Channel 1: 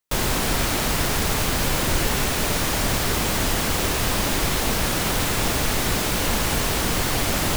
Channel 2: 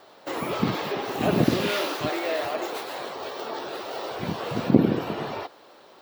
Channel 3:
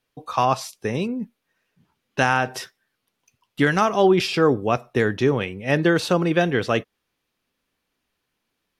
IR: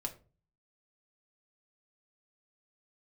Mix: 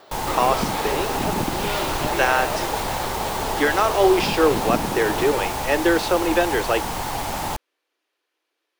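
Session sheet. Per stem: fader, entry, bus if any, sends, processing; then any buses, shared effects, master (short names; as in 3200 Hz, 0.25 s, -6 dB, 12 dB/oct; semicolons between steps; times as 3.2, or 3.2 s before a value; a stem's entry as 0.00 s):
-7.5 dB, 0.00 s, no send, bell 850 Hz +15 dB 0.57 oct
+3.0 dB, 0.00 s, no send, compressor, threshold -25 dBFS, peak gain reduction 14.5 dB
+1.0 dB, 0.00 s, no send, Chebyshev high-pass 310 Hz, order 5; high shelf 8400 Hz -8.5 dB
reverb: off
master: dry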